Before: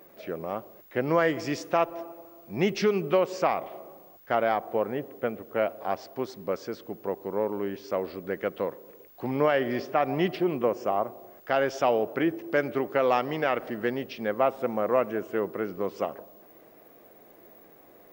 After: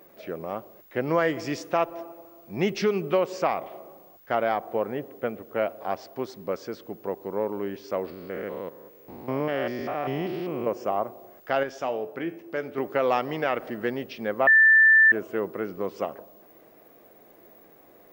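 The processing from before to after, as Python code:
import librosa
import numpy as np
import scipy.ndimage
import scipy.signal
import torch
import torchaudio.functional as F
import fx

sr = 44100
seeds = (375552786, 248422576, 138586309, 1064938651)

y = fx.spec_steps(x, sr, hold_ms=200, at=(8.1, 10.67))
y = fx.comb_fb(y, sr, f0_hz=87.0, decay_s=0.42, harmonics='all', damping=0.0, mix_pct=60, at=(11.63, 12.78))
y = fx.edit(y, sr, fx.bleep(start_s=14.47, length_s=0.65, hz=1770.0, db=-12.5), tone=tone)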